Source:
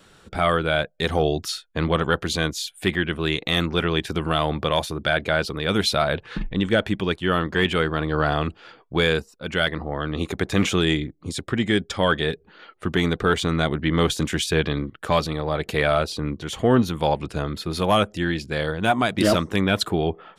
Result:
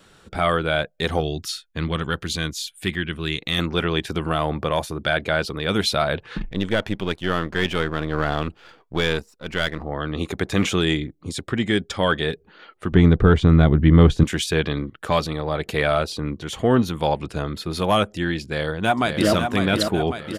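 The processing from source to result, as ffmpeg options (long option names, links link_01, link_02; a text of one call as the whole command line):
ffmpeg -i in.wav -filter_complex "[0:a]asettb=1/sr,asplit=3[link_01][link_02][link_03];[link_01]atrim=end=1.204[link_04];[link_02]atrim=start=1.2:end=3.59,asetpts=PTS-STARTPTS,afade=type=in:duration=0.004:curve=qsin,afade=type=out:start_time=2.386:duration=0.004:curve=qsin,equalizer=frequency=660:width_type=o:width=1.9:gain=-9[link_05];[link_03]atrim=start=3.586[link_06];[link_04][link_05]acrossfade=duration=0.004:curve1=hsin:curve2=qsin[link_07];[link_07][link_06]acrossfade=duration=0.004:curve1=qsin:curve2=hsin,asettb=1/sr,asplit=3[link_08][link_09][link_10];[link_08]atrim=end=4.294[link_11];[link_09]atrim=start=4.29:end=4.92,asetpts=PTS-STARTPTS,afade=type=in:duration=0.004:curve=qsin,afade=type=out:start_time=0.626:duration=0.004:curve=qsin,equalizer=frequency=3600:width=1.5:gain=-6.5[link_12];[link_10]atrim=start=4.916[link_13];[link_11][link_12]acrossfade=duration=0.004:curve1=hsin:curve2=qsin[link_14];[link_14][link_13]acrossfade=duration=0.004:curve1=qsin:curve2=hsin,asettb=1/sr,asplit=3[link_15][link_16][link_17];[link_15]atrim=end=6.404[link_18];[link_16]atrim=start=6.4:end=9.83,asetpts=PTS-STARTPTS,afade=type=in:duration=0.004:curve=qsin,afade=type=out:start_time=3.426:duration=0.004:curve=qsin,aeval=exprs='if(lt(val(0),0),0.447*val(0),val(0))':channel_layout=same[link_19];[link_17]atrim=start=9.826[link_20];[link_18][link_19]acrossfade=duration=0.004:curve1=hsin:curve2=qsin[link_21];[link_21][link_20]acrossfade=duration=0.004:curve1=qsin:curve2=hsin,asettb=1/sr,asplit=3[link_22][link_23][link_24];[link_22]atrim=end=12.924[link_25];[link_23]atrim=start=12.92:end=14.24,asetpts=PTS-STARTPTS,afade=type=in:duration=0.004:curve=qsin,afade=type=out:start_time=1.316:duration=0.004:curve=qsin,aemphasis=mode=reproduction:type=riaa[link_26];[link_24]atrim=start=14.236[link_27];[link_25][link_26]acrossfade=duration=0.004:curve1=hsin:curve2=qsin[link_28];[link_28][link_27]acrossfade=duration=0.004:curve1=qsin:curve2=hsin,asplit=2[link_29][link_30];[link_30]afade=type=in:start_time=18.42:duration=0.01,afade=type=out:start_time=19.33:duration=0.01,aecho=0:1:550|1100|1650|2200|2750|3300|3850|4400:0.501187|0.300712|0.180427|0.108256|0.0649539|0.0389723|0.0233834|0.01403[link_31];[link_29][link_31]amix=inputs=2:normalize=0" out.wav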